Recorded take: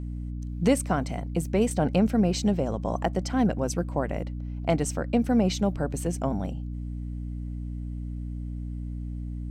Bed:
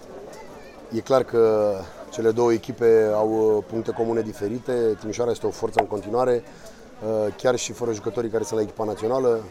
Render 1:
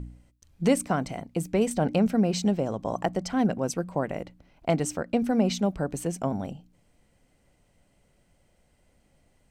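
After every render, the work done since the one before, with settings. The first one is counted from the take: de-hum 60 Hz, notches 5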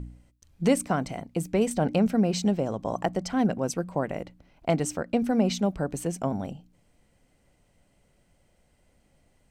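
no audible change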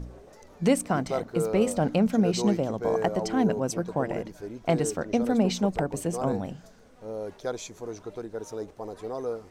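add bed -11.5 dB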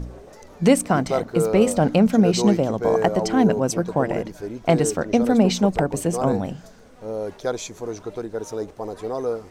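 trim +6.5 dB

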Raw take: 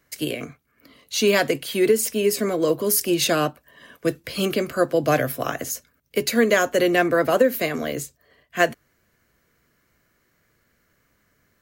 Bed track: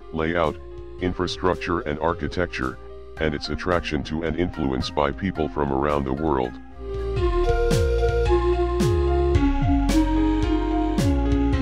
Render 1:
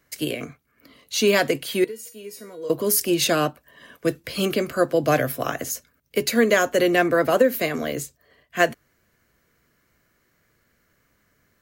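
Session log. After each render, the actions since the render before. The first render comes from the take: 1.84–2.70 s: feedback comb 480 Hz, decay 0.36 s, mix 90%; 4.47–5.24 s: short-mantissa float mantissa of 8-bit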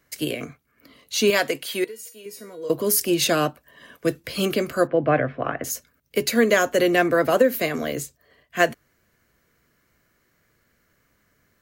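1.30–2.26 s: bass shelf 270 Hz -12 dB; 4.87–5.64 s: low-pass 2.4 kHz 24 dB/octave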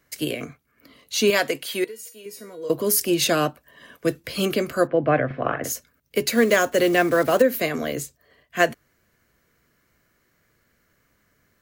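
5.26–5.73 s: doubling 44 ms -4 dB; 6.28–7.42 s: block-companded coder 5-bit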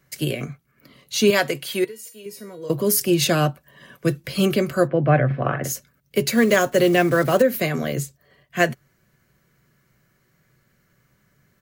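peaking EQ 130 Hz +11.5 dB 0.8 oct; comb 5.3 ms, depth 31%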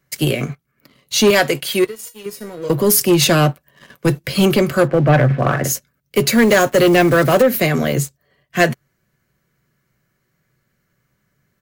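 waveshaping leveller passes 2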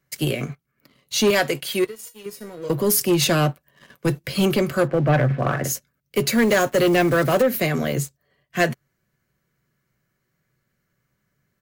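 trim -5.5 dB

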